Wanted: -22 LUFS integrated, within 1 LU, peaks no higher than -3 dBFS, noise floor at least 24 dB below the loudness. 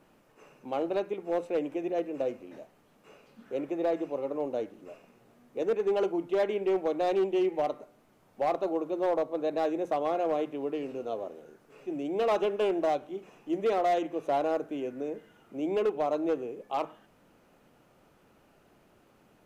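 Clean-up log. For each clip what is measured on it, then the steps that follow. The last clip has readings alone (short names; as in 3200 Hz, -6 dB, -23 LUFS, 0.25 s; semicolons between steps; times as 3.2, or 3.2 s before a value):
clipped 1.5%; flat tops at -21.5 dBFS; loudness -30.5 LUFS; peak -21.5 dBFS; loudness target -22.0 LUFS
-> clip repair -21.5 dBFS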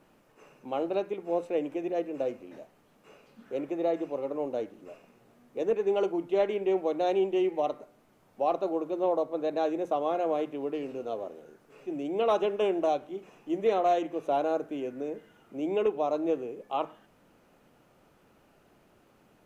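clipped 0.0%; loudness -30.0 LUFS; peak -15.0 dBFS; loudness target -22.0 LUFS
-> gain +8 dB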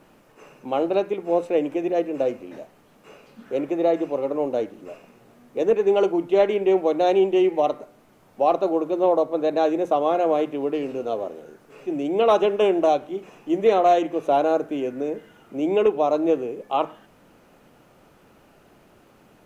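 loudness -22.0 LUFS; peak -7.0 dBFS; noise floor -55 dBFS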